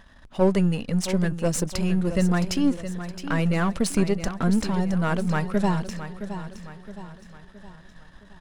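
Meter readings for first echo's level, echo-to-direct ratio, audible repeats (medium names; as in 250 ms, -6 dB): -11.0 dB, -10.0 dB, 4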